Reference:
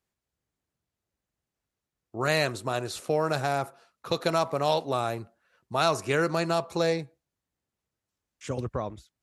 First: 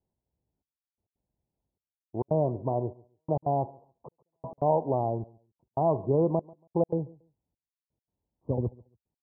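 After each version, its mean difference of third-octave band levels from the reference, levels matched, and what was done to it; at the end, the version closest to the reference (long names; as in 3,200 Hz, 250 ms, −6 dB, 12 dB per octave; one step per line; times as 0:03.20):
15.5 dB: Butterworth low-pass 1,000 Hz 96 dB per octave
low-shelf EQ 350 Hz +5 dB
gate pattern "xxxxxxx....x." 169 BPM −60 dB
on a send: repeating echo 140 ms, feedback 19%, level −23 dB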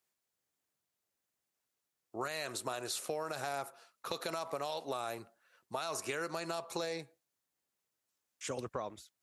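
5.5 dB: high-pass filter 490 Hz 6 dB per octave
high-shelf EQ 6,700 Hz +7.5 dB
brickwall limiter −20 dBFS, peak gain reduction 9.5 dB
downward compressor, threshold −33 dBFS, peak gain reduction 8 dB
level −1 dB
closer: second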